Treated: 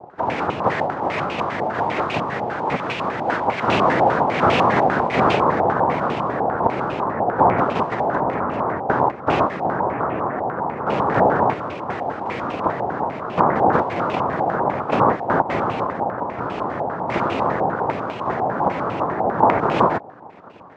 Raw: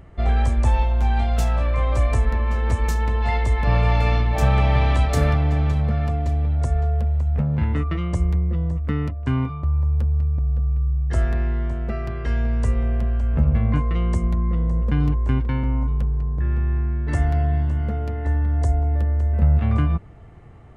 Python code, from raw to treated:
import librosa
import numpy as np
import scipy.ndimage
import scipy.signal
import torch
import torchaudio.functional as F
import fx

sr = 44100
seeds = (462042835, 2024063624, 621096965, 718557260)

y = fx.halfwave_hold(x, sr, at=(10.86, 11.53))
y = fx.noise_vocoder(y, sr, seeds[0], bands=2)
y = fx.filter_held_lowpass(y, sr, hz=10.0, low_hz=790.0, high_hz=2600.0)
y = y * librosa.db_to_amplitude(2.0)